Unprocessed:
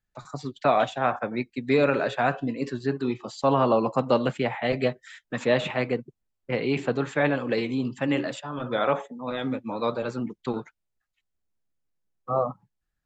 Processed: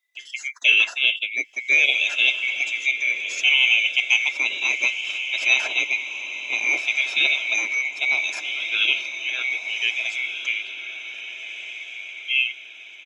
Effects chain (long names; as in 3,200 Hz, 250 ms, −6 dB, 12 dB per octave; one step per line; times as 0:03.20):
neighbouring bands swapped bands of 2,000 Hz
high-pass filter 410 Hz 12 dB per octave
high-shelf EQ 3,800 Hz +9.5 dB
comb filter 3 ms, depth 35%
feedback delay with all-pass diffusion 1,617 ms, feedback 40%, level −9 dB